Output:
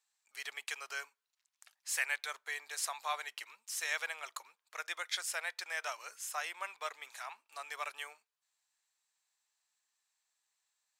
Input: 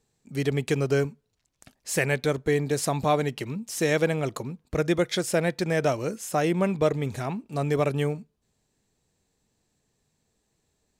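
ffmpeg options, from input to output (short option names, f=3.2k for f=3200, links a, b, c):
-af "highpass=f=990:w=0.5412,highpass=f=990:w=1.3066,volume=-5.5dB" -ar 44100 -c:a aac -b:a 192k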